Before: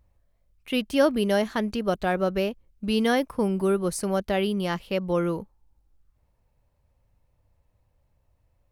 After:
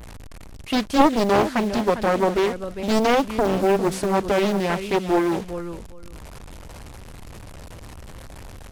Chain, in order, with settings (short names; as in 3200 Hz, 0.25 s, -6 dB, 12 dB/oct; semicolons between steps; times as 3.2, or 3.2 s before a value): delta modulation 64 kbps, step -38 dBFS; feedback echo 0.402 s, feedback 16%, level -11.5 dB; Doppler distortion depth 0.88 ms; gain +5 dB